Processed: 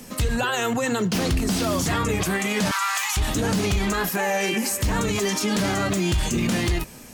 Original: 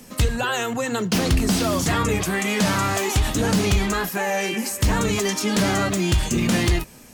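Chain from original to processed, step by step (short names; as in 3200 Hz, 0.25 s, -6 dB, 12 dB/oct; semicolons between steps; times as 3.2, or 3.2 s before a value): 2.71–3.17 steep high-pass 930 Hz 36 dB/oct; limiter -18 dBFS, peak gain reduction 7.5 dB; gain +3 dB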